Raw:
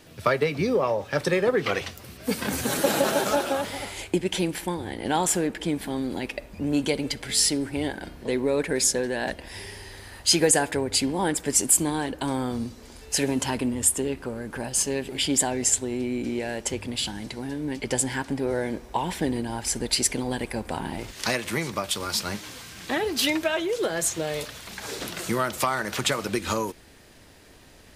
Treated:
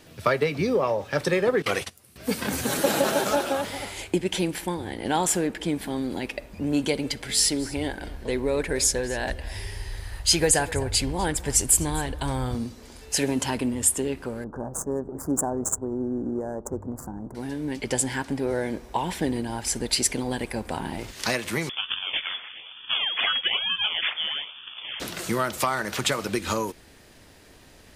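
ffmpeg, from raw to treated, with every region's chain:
ffmpeg -i in.wav -filter_complex "[0:a]asettb=1/sr,asplit=3[link_01][link_02][link_03];[link_01]atrim=end=1.624[link_04];[link_02]atrim=start=1.62:end=2.16,asetpts=PTS-STARTPTS,afade=type=in:duration=0.004:curve=qsin,afade=type=out:start_time=0.536:duration=0.004:curve=qsin,highpass=60,agate=range=-16dB:threshold=-35dB:ratio=16:release=100:detection=peak,equalizer=frequency=10000:width=1.1:gain=13.5[link_05];[link_03]atrim=start=2.156[link_06];[link_04][link_05]acrossfade=duration=0.004:curve1=hsin:curve2=qsin[link_07];[link_07][link_06]acrossfade=duration=0.004:curve1=qsin:curve2=hsin,asettb=1/sr,asplit=3[link_08][link_09][link_10];[link_08]atrim=end=7.184[link_11];[link_09]atrim=start=7.18:end=12.55,asetpts=PTS-STARTPTS,afade=type=in:duration=0.004:curve=qsin,afade=type=out:start_time=5.366:duration=0.004:curve=qsin,asubboost=boost=11:cutoff=76,aecho=1:1:249:0.119,atrim=end_sample=236817[link_12];[link_10]atrim=start=12.546[link_13];[link_11][link_12]acrossfade=duration=0.004:curve1=hsin:curve2=qsin[link_14];[link_14][link_13]acrossfade=duration=0.004:curve1=qsin:curve2=hsin,asettb=1/sr,asplit=3[link_15][link_16][link_17];[link_15]atrim=end=14.444[link_18];[link_16]atrim=start=14.44:end=17.35,asetpts=PTS-STARTPTS,afade=type=in:duration=0.004:curve=qsin,afade=type=out:start_time=2.906:duration=0.004:curve=qsin,highshelf=frequency=12000:gain=4.5,adynamicsmooth=sensitivity=3:basefreq=930,asuperstop=centerf=3100:order=8:qfactor=0.56[link_19];[link_17]atrim=start=17.346[link_20];[link_18][link_19]acrossfade=duration=0.004:curve1=hsin:curve2=qsin[link_21];[link_21][link_20]acrossfade=duration=0.004:curve1=qsin:curve2=hsin,asettb=1/sr,asplit=3[link_22][link_23][link_24];[link_22]atrim=end=21.694[link_25];[link_23]atrim=start=21.69:end=25,asetpts=PTS-STARTPTS,afade=type=in:duration=0.004:curve=qsin,afade=type=out:start_time=3.306:duration=0.004:curve=qsin,acrusher=samples=20:mix=1:aa=0.000001:lfo=1:lforange=20:lforate=1.1,highpass=frequency=100:poles=1,lowpass=frequency=3100:width_type=q:width=0.5098,lowpass=frequency=3100:width_type=q:width=0.6013,lowpass=frequency=3100:width_type=q:width=0.9,lowpass=frequency=3100:width_type=q:width=2.563,afreqshift=-3600[link_26];[link_24]atrim=start=24.996[link_27];[link_25][link_26]acrossfade=duration=0.004:curve1=hsin:curve2=qsin[link_28];[link_28][link_27]acrossfade=duration=0.004:curve1=qsin:curve2=hsin" out.wav

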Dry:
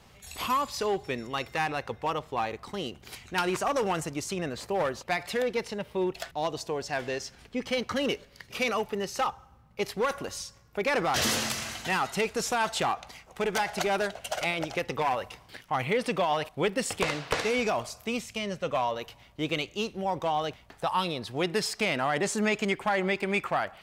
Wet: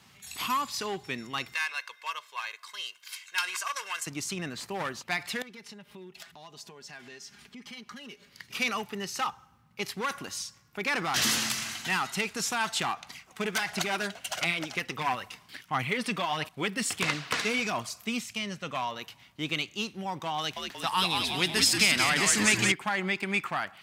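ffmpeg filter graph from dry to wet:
ffmpeg -i in.wav -filter_complex "[0:a]asettb=1/sr,asplit=3[link_01][link_02][link_03];[link_01]atrim=end=1.544[link_04];[link_02]atrim=start=1.54:end=4.07,asetpts=PTS-STARTPTS,afade=type=in:duration=0.004:curve=qsin,afade=type=out:start_time=2.526:duration=0.004:curve=qsin,highpass=1300,aecho=1:1:1.9:0.73,atrim=end_sample=111573[link_05];[link_03]atrim=start=4.066[link_06];[link_04][link_05]acrossfade=duration=0.004:curve1=hsin:curve2=qsin[link_07];[link_07][link_06]acrossfade=duration=0.004:curve1=qsin:curve2=hsin,asettb=1/sr,asplit=3[link_08][link_09][link_10];[link_08]atrim=end=5.424[link_11];[link_09]atrim=start=5.42:end=8.29,asetpts=PTS-STARTPTS,afade=type=in:duration=0.004:curve=qsin,afade=type=out:start_time=2.866:duration=0.004:curve=qsin,aecho=1:1:4.9:0.53,atrim=end_sample=126567,acompressor=threshold=-45dB:ratio=3:attack=3.2:release=140:knee=1:detection=peak[link_12];[link_10]atrim=start=8.286[link_13];[link_11][link_12]acrossfade=duration=0.004:curve1=hsin:curve2=qsin[link_14];[link_14][link_13]acrossfade=duration=0.004:curve1=qsin:curve2=hsin,asettb=1/sr,asplit=3[link_15][link_16][link_17];[link_15]atrim=end=13.104[link_18];[link_16]atrim=start=13.1:end=18.33,asetpts=PTS-STARTPTS,afade=type=in:duration=0.004:curve=qsin,afade=type=out:start_time=5.226:duration=0.004:curve=qsin,bandreject=frequency=850:width=16,aphaser=in_gain=1:out_gain=1:delay=4.9:decay=0.36:speed=1.5:type=sinusoidal[link_19];[link_17]atrim=start=18.326[link_20];[link_18][link_19]acrossfade=duration=0.004:curve1=hsin:curve2=qsin[link_21];[link_21][link_20]acrossfade=duration=0.004:curve1=qsin:curve2=hsin,asettb=1/sr,asplit=3[link_22][link_23][link_24];[link_22]atrim=end=20.384[link_25];[link_23]atrim=start=20.38:end=22.72,asetpts=PTS-STARTPTS,afade=type=in:duration=0.004:curve=qsin,afade=type=out:start_time=2.336:duration=0.004:curve=qsin,highshelf=frequency=2400:gain=8.5,asplit=9[link_26][link_27][link_28][link_29][link_30][link_31][link_32][link_33][link_34];[link_27]adelay=182,afreqshift=-92,volume=-4dB[link_35];[link_28]adelay=364,afreqshift=-184,volume=-8.7dB[link_36];[link_29]adelay=546,afreqshift=-276,volume=-13.5dB[link_37];[link_30]adelay=728,afreqshift=-368,volume=-18.2dB[link_38];[link_31]adelay=910,afreqshift=-460,volume=-22.9dB[link_39];[link_32]adelay=1092,afreqshift=-552,volume=-27.7dB[link_40];[link_33]adelay=1274,afreqshift=-644,volume=-32.4dB[link_41];[link_34]adelay=1456,afreqshift=-736,volume=-37.1dB[link_42];[link_26][link_35][link_36][link_37][link_38][link_39][link_40][link_41][link_42]amix=inputs=9:normalize=0,atrim=end_sample=103194[link_43];[link_24]atrim=start=22.716[link_44];[link_25][link_43]acrossfade=duration=0.004:curve1=hsin:curve2=qsin[link_45];[link_45][link_44]acrossfade=duration=0.004:curve1=qsin:curve2=hsin,highpass=150,equalizer=frequency=530:width=1.1:gain=-13,volume=2dB" out.wav

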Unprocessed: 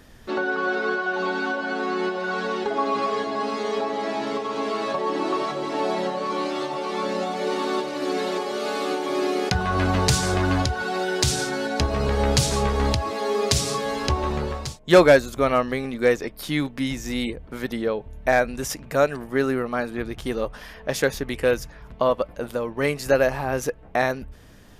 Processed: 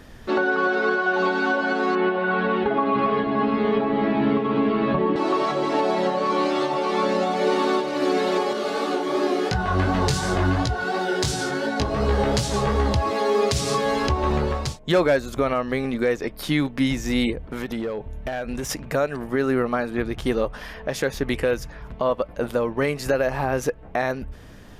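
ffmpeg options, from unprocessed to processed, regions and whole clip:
ffmpeg -i in.wav -filter_complex "[0:a]asettb=1/sr,asplit=3[link_01][link_02][link_03];[link_01]atrim=end=1.954[link_04];[link_02]atrim=start=1.95:end=5.16,asetpts=PTS-STARTPTS,afade=type=in:duration=0.004:curve=qsin,afade=type=out:start_time=3.206:duration=0.004:curve=qsin,asubboost=boost=8.5:cutoff=240,lowpass=frequency=3200:width=0.5412,lowpass=frequency=3200:width=1.3066[link_05];[link_03]atrim=start=5.156[link_06];[link_04][link_05]acrossfade=duration=0.004:curve1=hsin:curve2=qsin[link_07];[link_07][link_06]acrossfade=duration=0.004:curve1=qsin:curve2=hsin,asettb=1/sr,asplit=3[link_08][link_09][link_10];[link_08]atrim=end=8.534[link_11];[link_09]atrim=start=8.53:end=12.96,asetpts=PTS-STARTPTS,afade=type=in:duration=0.004:curve=qsin,afade=type=out:start_time=4.426:duration=0.004:curve=qsin,equalizer=frequency=2400:width=7.6:gain=-4.5,flanger=delay=17:depth=4.2:speed=2.8[link_12];[link_10]atrim=start=12.956[link_13];[link_11][link_12]acrossfade=duration=0.004:curve1=hsin:curve2=qsin[link_14];[link_14][link_13]acrossfade=duration=0.004:curve1=qsin:curve2=hsin,asettb=1/sr,asplit=3[link_15][link_16][link_17];[link_15]atrim=end=17.484[link_18];[link_16]atrim=start=17.48:end=18.69,asetpts=PTS-STARTPTS,afade=type=in:duration=0.004:curve=qsin,afade=type=out:start_time=1.206:duration=0.004:curve=qsin,bandreject=frequency=4600:width=18,acompressor=threshold=-28dB:ratio=6:attack=3.2:release=140:knee=1:detection=peak,asoftclip=type=hard:threshold=-27.5dB[link_19];[link_17]atrim=start=18.686[link_20];[link_18][link_19]acrossfade=duration=0.004:curve1=hsin:curve2=qsin[link_21];[link_21][link_20]acrossfade=duration=0.004:curve1=qsin:curve2=hsin,highshelf=frequency=4500:gain=-6,alimiter=limit=-16.5dB:level=0:latency=1:release=232,volume=5dB" out.wav

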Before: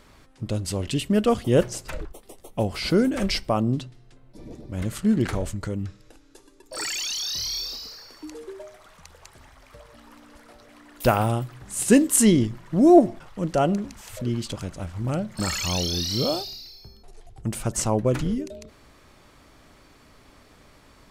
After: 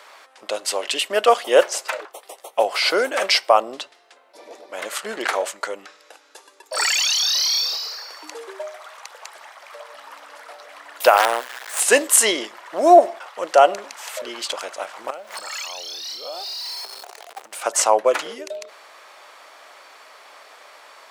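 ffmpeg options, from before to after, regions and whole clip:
ffmpeg -i in.wav -filter_complex "[0:a]asettb=1/sr,asplit=3[link_01][link_02][link_03];[link_01]atrim=end=11.174[link_04];[link_02]atrim=start=11.17:end=11.8,asetpts=PTS-STARTPTS,afade=type=in:duration=0.004:curve=qsin,afade=type=out:start_time=0.626:duration=0.004:curve=qsin,equalizer=frequency=1700:width_type=o:width=0.33:gain=14,acrusher=bits=4:dc=4:mix=0:aa=0.000001[link_05];[link_03]atrim=start=11.796[link_06];[link_04][link_05]acrossfade=duration=0.004:curve1=hsin:curve2=qsin[link_07];[link_07][link_06]acrossfade=duration=0.004:curve1=qsin:curve2=hsin,asettb=1/sr,asplit=3[link_08][link_09][link_10];[link_08]atrim=end=15.104[link_11];[link_09]atrim=start=15.1:end=17.62,asetpts=PTS-STARTPTS,afade=type=in:duration=0.004:curve=qsin,afade=type=out:start_time=2.516:duration=0.004:curve=qsin,aeval=exprs='val(0)+0.5*0.0126*sgn(val(0))':channel_layout=same,acompressor=threshold=-36dB:ratio=12:attack=3.2:release=140:knee=1:detection=peak[link_12];[link_10]atrim=start=17.616[link_13];[link_11][link_12]acrossfade=duration=0.004:curve1=hsin:curve2=qsin[link_14];[link_14][link_13]acrossfade=duration=0.004:curve1=qsin:curve2=hsin,highpass=frequency=580:width=0.5412,highpass=frequency=580:width=1.3066,highshelf=frequency=4600:gain=-6.5,alimiter=level_in=13.5dB:limit=-1dB:release=50:level=0:latency=1,volume=-1dB" out.wav

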